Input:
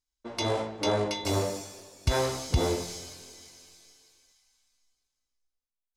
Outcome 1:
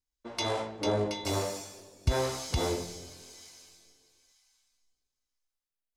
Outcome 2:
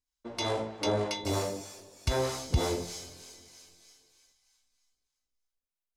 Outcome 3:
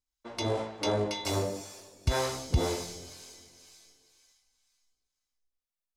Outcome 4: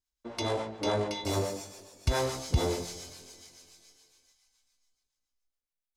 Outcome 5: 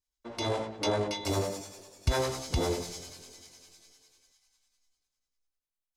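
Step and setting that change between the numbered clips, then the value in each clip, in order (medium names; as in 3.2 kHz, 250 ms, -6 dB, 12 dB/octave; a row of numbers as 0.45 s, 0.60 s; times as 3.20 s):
harmonic tremolo, rate: 1 Hz, 3.2 Hz, 2 Hz, 7.1 Hz, 10 Hz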